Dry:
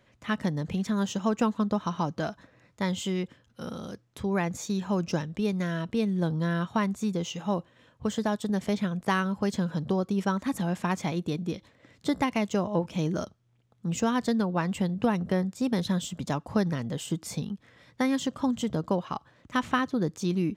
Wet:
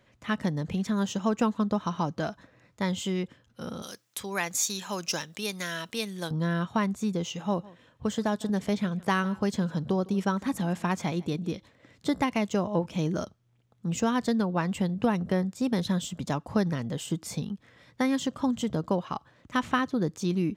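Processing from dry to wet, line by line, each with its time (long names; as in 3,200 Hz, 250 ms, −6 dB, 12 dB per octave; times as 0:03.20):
0:03.82–0:06.31: spectral tilt +4.5 dB per octave
0:07.35–0:11.55: single-tap delay 155 ms −22 dB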